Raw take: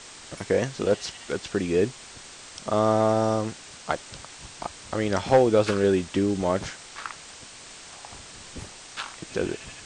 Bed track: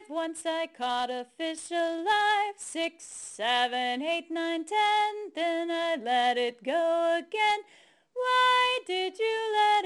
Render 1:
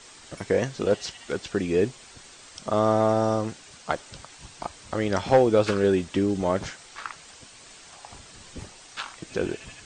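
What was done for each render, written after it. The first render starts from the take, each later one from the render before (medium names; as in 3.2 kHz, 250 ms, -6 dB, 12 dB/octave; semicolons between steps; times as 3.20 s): noise reduction 6 dB, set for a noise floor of -45 dBFS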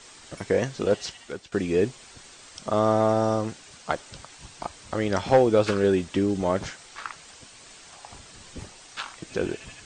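1.07–1.52 s: fade out, to -15.5 dB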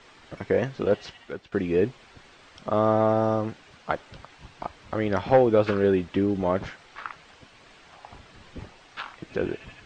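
low-pass 2.9 kHz 12 dB/octave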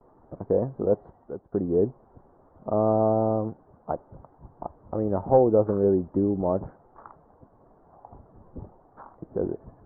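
gate with hold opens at -46 dBFS; inverse Chebyshev low-pass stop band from 2.4 kHz, stop band 50 dB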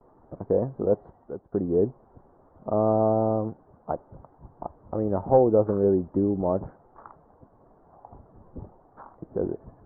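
no audible change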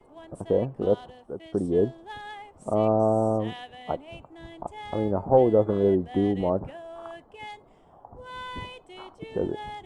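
add bed track -15.5 dB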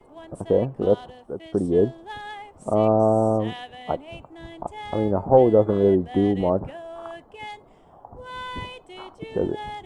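trim +3.5 dB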